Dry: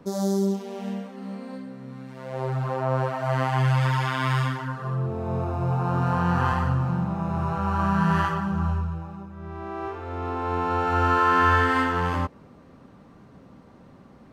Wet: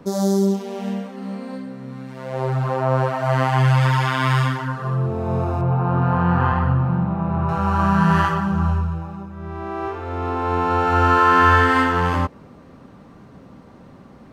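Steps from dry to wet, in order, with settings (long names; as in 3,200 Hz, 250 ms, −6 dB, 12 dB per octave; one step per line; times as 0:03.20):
0:05.61–0:07.49: high-frequency loss of the air 330 metres
level +5.5 dB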